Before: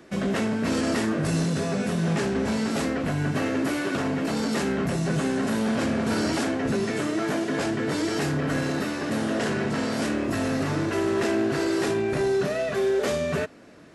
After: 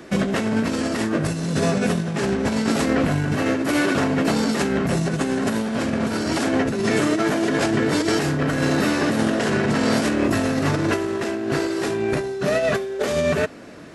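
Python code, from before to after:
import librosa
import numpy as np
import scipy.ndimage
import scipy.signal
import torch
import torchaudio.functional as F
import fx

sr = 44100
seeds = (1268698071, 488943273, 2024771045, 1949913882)

y = fx.over_compress(x, sr, threshold_db=-27.0, ratio=-0.5)
y = F.gain(torch.from_numpy(y), 6.5).numpy()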